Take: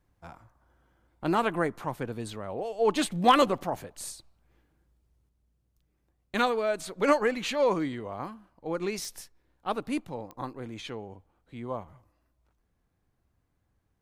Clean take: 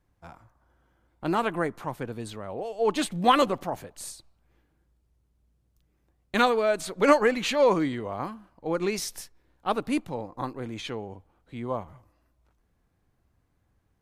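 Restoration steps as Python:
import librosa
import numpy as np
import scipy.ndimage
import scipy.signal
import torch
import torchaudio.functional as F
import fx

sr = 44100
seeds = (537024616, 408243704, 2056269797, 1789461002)

y = fx.fix_declip(x, sr, threshold_db=-10.0)
y = fx.fix_declick_ar(y, sr, threshold=10.0)
y = fx.fix_level(y, sr, at_s=5.29, step_db=4.0)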